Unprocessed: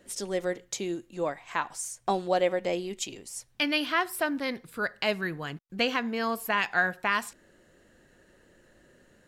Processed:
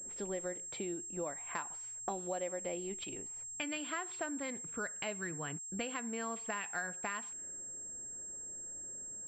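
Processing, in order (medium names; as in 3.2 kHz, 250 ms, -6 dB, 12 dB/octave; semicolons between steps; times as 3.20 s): level-controlled noise filter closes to 1.1 kHz, open at -25 dBFS; compression 4:1, threshold -36 dBFS, peak gain reduction 13.5 dB; class-D stage that switches slowly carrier 7.5 kHz; trim -2 dB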